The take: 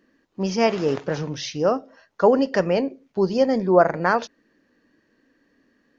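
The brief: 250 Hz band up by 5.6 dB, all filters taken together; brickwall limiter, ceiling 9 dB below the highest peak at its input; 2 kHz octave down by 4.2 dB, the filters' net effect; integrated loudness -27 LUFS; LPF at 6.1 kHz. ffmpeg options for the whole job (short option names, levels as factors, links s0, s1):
-af "lowpass=6100,equalizer=f=250:t=o:g=7,equalizer=f=2000:t=o:g=-6,volume=0.531,alimiter=limit=0.168:level=0:latency=1"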